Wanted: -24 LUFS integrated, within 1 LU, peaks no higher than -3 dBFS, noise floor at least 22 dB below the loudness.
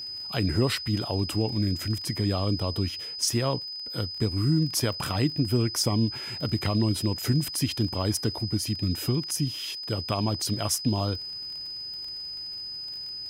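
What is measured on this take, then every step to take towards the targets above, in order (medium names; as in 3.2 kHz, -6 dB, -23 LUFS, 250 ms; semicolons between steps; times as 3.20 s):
tick rate 36 per s; steady tone 5 kHz; tone level -34 dBFS; loudness -27.5 LUFS; peak level -12.0 dBFS; loudness target -24.0 LUFS
-> de-click; band-stop 5 kHz, Q 30; trim +3.5 dB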